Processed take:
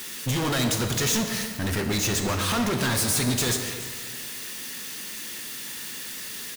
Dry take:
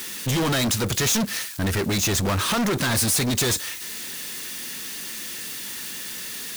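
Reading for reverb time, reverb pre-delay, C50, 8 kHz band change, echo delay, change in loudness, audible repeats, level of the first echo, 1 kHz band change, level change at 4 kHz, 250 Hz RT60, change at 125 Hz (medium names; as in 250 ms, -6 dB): 1.8 s, 3 ms, 5.5 dB, -2.5 dB, 284 ms, -2.5 dB, 1, -15.0 dB, -2.0 dB, -2.5 dB, 1.7 s, -2.0 dB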